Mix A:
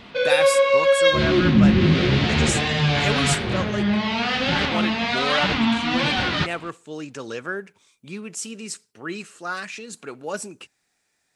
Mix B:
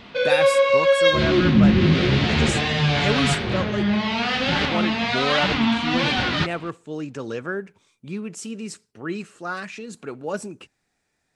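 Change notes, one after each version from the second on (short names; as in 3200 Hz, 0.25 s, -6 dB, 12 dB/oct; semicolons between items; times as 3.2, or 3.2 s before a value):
speech: add tilt -2 dB/oct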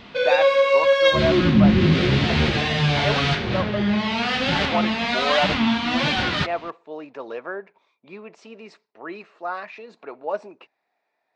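speech: add speaker cabinet 470–3700 Hz, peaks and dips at 660 Hz +8 dB, 960 Hz +6 dB, 1500 Hz -5 dB, 3100 Hz -8 dB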